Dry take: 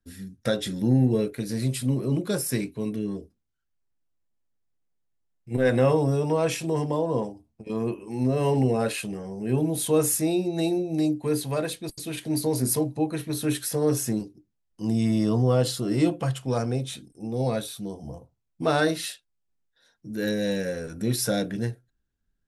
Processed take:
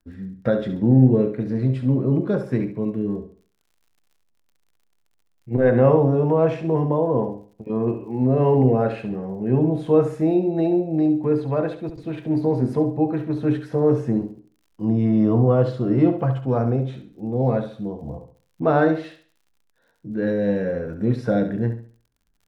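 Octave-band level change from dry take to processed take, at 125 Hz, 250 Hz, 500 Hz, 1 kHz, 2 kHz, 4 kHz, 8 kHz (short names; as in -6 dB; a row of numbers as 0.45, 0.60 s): +5.5 dB, +5.5 dB, +5.5 dB, +4.5 dB, -0.5 dB, under -10 dB, under -25 dB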